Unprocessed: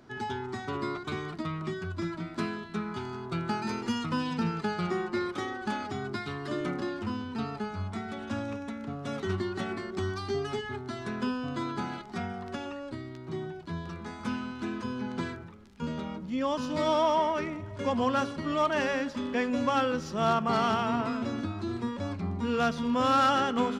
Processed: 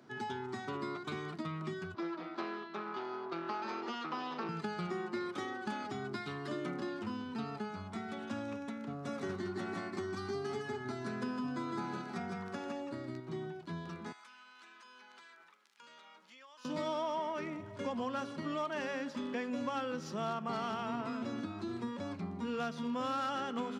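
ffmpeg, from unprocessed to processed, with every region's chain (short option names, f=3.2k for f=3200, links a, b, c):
-filter_complex "[0:a]asettb=1/sr,asplit=3[a][b][c];[a]atrim=end=1.944[d];[b]atrim=start=1.94:end=4.49,asetpts=PTS-STARTPTS,afade=t=in:d=0.004:c=qsin,afade=t=out:st=2.546:d=0.004:c=qsin,aeval=exprs='clip(val(0),-1,0.0133)':c=same,highpass=340,equalizer=f=350:t=q:w=4:g=8,equalizer=f=790:t=q:w=4:g=6,equalizer=f=1.2k:t=q:w=4:g=7,lowpass=f=5.2k:w=0.5412,lowpass=f=5.2k:w=1.3066[e];[c]atrim=start=4.486[f];[d][e]acrossfade=d=0.004:c1=hsin:c2=qsin[g];[g][f]acrossfade=d=0.004:c1=qsin:c2=hsin,asettb=1/sr,asplit=3[h][i][j];[h]atrim=end=8.934[k];[i]atrim=start=8.93:end=13.2,asetpts=PTS-STARTPTS,afade=t=in:d=0.004:c=qsin,afade=t=out:st=4.266:d=0.004:c=qsin,equalizer=f=3.1k:w=3.2:g=-6.5,aecho=1:1:158:0.668,atrim=end_sample=188307[l];[j]atrim=start=13.196[m];[k][l]acrossfade=d=0.004:c1=hsin:c2=qsin[n];[n][m]acrossfade=d=0.004:c1=qsin:c2=hsin,asettb=1/sr,asplit=3[o][p][q];[o]atrim=end=14.124[r];[p]atrim=start=14.12:end=16.65,asetpts=PTS-STARTPTS,afade=t=in:d=0.004:c=qsin,afade=t=out:st=2.526:d=0.004:c=qsin,highpass=1.2k,acompressor=threshold=-49dB:ratio=12:attack=3.2:release=140:knee=1:detection=peak[s];[q]atrim=start=16.646[t];[r][s]acrossfade=d=0.004:c1=hsin:c2=qsin[u];[u][t]acrossfade=d=0.004:c1=qsin:c2=hsin,acompressor=threshold=-31dB:ratio=3,highpass=f=120:w=0.5412,highpass=f=120:w=1.3066,volume=-4dB"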